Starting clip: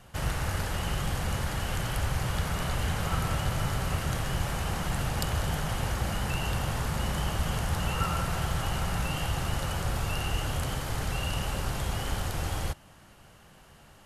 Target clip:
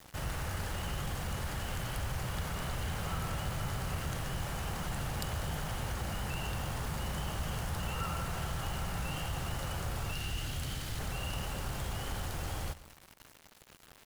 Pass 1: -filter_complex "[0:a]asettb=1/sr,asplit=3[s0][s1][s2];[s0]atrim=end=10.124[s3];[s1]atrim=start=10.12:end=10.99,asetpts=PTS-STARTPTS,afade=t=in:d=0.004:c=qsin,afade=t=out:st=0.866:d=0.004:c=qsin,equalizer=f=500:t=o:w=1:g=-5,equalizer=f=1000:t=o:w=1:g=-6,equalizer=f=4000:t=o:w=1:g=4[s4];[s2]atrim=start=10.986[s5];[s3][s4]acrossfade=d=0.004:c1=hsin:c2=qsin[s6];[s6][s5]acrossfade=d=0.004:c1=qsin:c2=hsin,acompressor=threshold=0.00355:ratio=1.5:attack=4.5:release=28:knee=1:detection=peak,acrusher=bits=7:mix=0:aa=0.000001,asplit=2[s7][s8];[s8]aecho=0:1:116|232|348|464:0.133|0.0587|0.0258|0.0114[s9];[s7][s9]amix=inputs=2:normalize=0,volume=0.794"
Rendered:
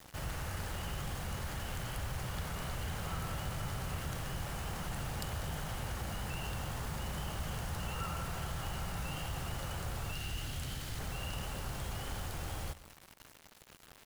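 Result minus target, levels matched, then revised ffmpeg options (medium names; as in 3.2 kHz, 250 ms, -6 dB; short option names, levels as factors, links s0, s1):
compression: peak gain reduction +2.5 dB
-filter_complex "[0:a]asettb=1/sr,asplit=3[s0][s1][s2];[s0]atrim=end=10.124[s3];[s1]atrim=start=10.12:end=10.99,asetpts=PTS-STARTPTS,afade=t=in:d=0.004:c=qsin,afade=t=out:st=0.866:d=0.004:c=qsin,equalizer=f=500:t=o:w=1:g=-5,equalizer=f=1000:t=o:w=1:g=-6,equalizer=f=4000:t=o:w=1:g=4[s4];[s2]atrim=start=10.986[s5];[s3][s4]acrossfade=d=0.004:c1=hsin:c2=qsin[s6];[s6][s5]acrossfade=d=0.004:c1=qsin:c2=hsin,acompressor=threshold=0.00891:ratio=1.5:attack=4.5:release=28:knee=1:detection=peak,acrusher=bits=7:mix=0:aa=0.000001,asplit=2[s7][s8];[s8]aecho=0:1:116|232|348|464:0.133|0.0587|0.0258|0.0114[s9];[s7][s9]amix=inputs=2:normalize=0,volume=0.794"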